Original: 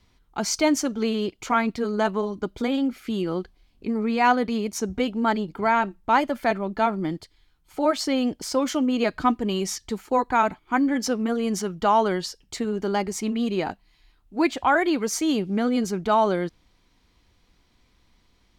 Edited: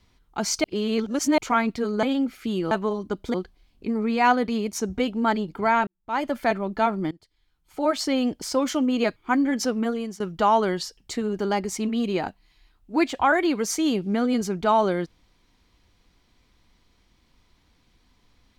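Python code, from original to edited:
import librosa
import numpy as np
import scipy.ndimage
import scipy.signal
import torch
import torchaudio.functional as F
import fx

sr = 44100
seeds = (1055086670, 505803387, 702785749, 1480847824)

y = fx.edit(x, sr, fx.reverse_span(start_s=0.64, length_s=0.74),
    fx.move(start_s=2.03, length_s=0.63, to_s=3.34),
    fx.fade_in_span(start_s=5.87, length_s=0.42, curve='qua'),
    fx.fade_in_from(start_s=7.11, length_s=0.9, floor_db=-21.0),
    fx.cut(start_s=9.16, length_s=1.43),
    fx.fade_out_to(start_s=11.29, length_s=0.34, floor_db=-20.5), tone=tone)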